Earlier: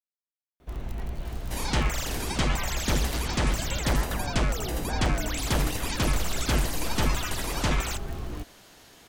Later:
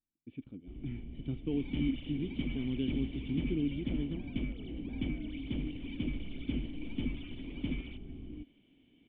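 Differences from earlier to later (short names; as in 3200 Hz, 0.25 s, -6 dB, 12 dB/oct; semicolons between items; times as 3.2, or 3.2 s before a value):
speech: unmuted; master: add vocal tract filter i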